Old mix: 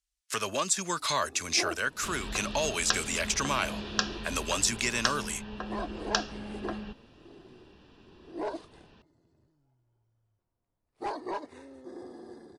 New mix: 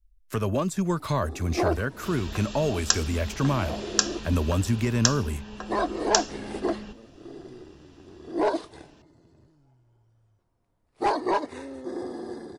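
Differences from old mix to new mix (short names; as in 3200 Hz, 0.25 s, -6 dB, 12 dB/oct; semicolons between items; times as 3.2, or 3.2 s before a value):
speech: remove weighting filter ITU-R 468; first sound +10.5 dB; second sound: remove LPF 4500 Hz 24 dB/oct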